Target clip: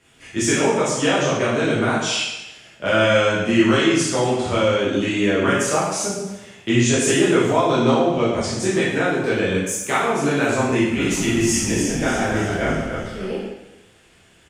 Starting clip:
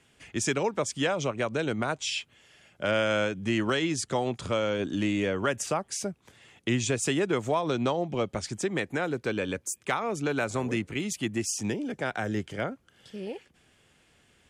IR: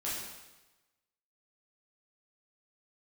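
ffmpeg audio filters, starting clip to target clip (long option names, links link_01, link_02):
-filter_complex "[0:a]asplit=3[link_01][link_02][link_03];[link_01]afade=type=out:start_time=10.93:duration=0.02[link_04];[link_02]asplit=7[link_05][link_06][link_07][link_08][link_09][link_10][link_11];[link_06]adelay=296,afreqshift=-51,volume=-6.5dB[link_12];[link_07]adelay=592,afreqshift=-102,volume=-13.1dB[link_13];[link_08]adelay=888,afreqshift=-153,volume=-19.6dB[link_14];[link_09]adelay=1184,afreqshift=-204,volume=-26.2dB[link_15];[link_10]adelay=1480,afreqshift=-255,volume=-32.7dB[link_16];[link_11]adelay=1776,afreqshift=-306,volume=-39.3dB[link_17];[link_05][link_12][link_13][link_14][link_15][link_16][link_17]amix=inputs=7:normalize=0,afade=type=in:start_time=10.93:duration=0.02,afade=type=out:start_time=13.24:duration=0.02[link_18];[link_03]afade=type=in:start_time=13.24:duration=0.02[link_19];[link_04][link_18][link_19]amix=inputs=3:normalize=0[link_20];[1:a]atrim=start_sample=2205,asetrate=48510,aresample=44100[link_21];[link_20][link_21]afir=irnorm=-1:irlink=0,volume=7dB"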